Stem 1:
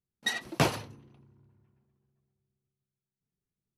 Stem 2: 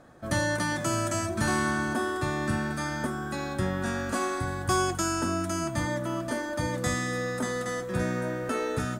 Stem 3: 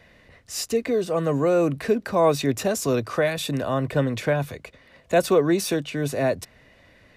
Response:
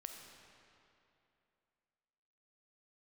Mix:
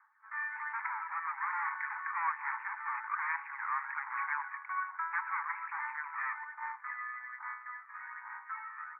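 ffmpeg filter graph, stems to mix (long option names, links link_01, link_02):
-filter_complex "[0:a]adelay=1900,volume=-4.5dB[link_01];[1:a]volume=-4dB[link_02];[2:a]acrusher=bits=5:mix=0:aa=0.5,volume=-2dB,asplit=3[link_03][link_04][link_05];[link_04]volume=-5.5dB[link_06];[link_05]apad=whole_len=250086[link_07];[link_01][link_07]sidechaincompress=threshold=-24dB:ratio=8:attack=16:release=1070[link_08];[3:a]atrim=start_sample=2205[link_09];[link_06][link_09]afir=irnorm=-1:irlink=0[link_10];[link_08][link_02][link_03][link_10]amix=inputs=4:normalize=0,aphaser=in_gain=1:out_gain=1:delay=1.7:decay=0.53:speed=1.2:type=sinusoidal,aeval=exprs='(tanh(15.8*val(0)+0.8)-tanh(0.8))/15.8':channel_layout=same,asuperpass=centerf=1400:order=20:qfactor=1"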